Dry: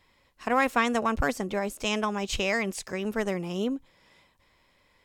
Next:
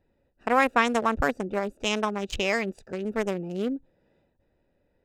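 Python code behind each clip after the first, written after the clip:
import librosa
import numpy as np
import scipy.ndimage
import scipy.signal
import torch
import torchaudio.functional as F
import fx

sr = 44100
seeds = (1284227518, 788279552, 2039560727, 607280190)

y = fx.wiener(x, sr, points=41)
y = fx.bass_treble(y, sr, bass_db=-5, treble_db=0)
y = y * 10.0 ** (3.5 / 20.0)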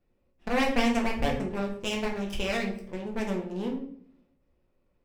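y = fx.lower_of_two(x, sr, delay_ms=0.36)
y = fx.room_shoebox(y, sr, seeds[0], volume_m3=84.0, walls='mixed', distance_m=0.83)
y = y * 10.0 ** (-6.5 / 20.0)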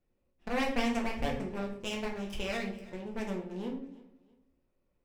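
y = fx.echo_feedback(x, sr, ms=327, feedback_pct=30, wet_db=-20.0)
y = y * 10.0 ** (-5.5 / 20.0)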